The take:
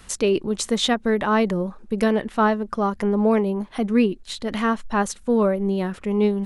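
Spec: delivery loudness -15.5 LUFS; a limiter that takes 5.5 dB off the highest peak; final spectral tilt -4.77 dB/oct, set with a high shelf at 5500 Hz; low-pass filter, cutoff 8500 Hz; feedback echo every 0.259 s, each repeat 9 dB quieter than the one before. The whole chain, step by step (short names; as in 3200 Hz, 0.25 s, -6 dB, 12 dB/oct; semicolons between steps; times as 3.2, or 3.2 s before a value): LPF 8500 Hz; high shelf 5500 Hz +7 dB; limiter -13.5 dBFS; feedback echo 0.259 s, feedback 35%, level -9 dB; gain +7.5 dB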